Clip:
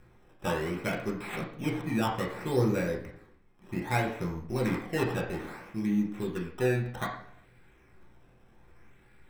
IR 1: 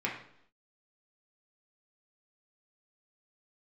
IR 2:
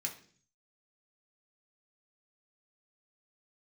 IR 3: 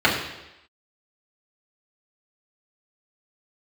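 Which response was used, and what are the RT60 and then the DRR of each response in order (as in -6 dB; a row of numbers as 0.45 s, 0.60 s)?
1; 0.70 s, 0.50 s, 0.95 s; -3.0 dB, 0.0 dB, -6.5 dB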